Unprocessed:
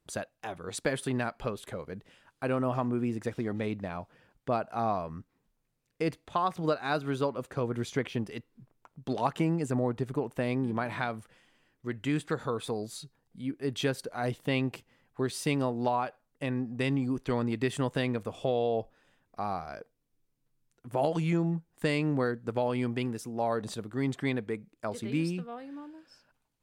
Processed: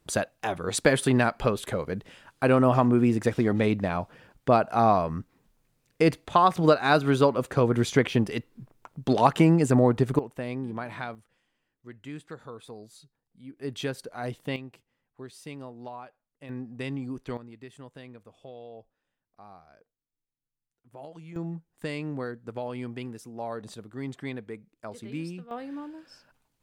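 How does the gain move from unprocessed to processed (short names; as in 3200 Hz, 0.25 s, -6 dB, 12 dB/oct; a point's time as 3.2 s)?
+9 dB
from 10.19 s -3 dB
from 11.15 s -10 dB
from 13.57 s -2 dB
from 14.56 s -12 dB
from 16.49 s -4.5 dB
from 17.37 s -16 dB
from 21.36 s -5 dB
from 25.51 s +5.5 dB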